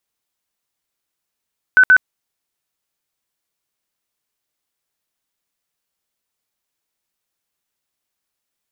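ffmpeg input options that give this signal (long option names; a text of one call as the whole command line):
ffmpeg -f lavfi -i "aevalsrc='0.531*sin(2*PI*1510*mod(t,0.13))*lt(mod(t,0.13),100/1510)':duration=0.26:sample_rate=44100" out.wav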